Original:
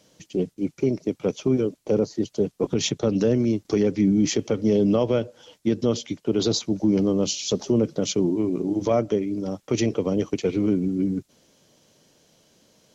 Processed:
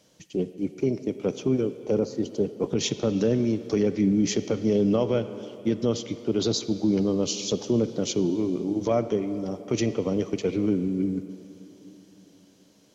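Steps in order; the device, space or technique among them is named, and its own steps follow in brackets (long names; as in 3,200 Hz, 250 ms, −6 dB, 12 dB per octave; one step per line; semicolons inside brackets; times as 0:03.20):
filtered reverb send (on a send: high-pass filter 280 Hz 6 dB per octave + low-pass filter 4,900 Hz 12 dB per octave + convolution reverb RT60 3.2 s, pre-delay 42 ms, DRR 11.5 dB)
on the sum: level −2.5 dB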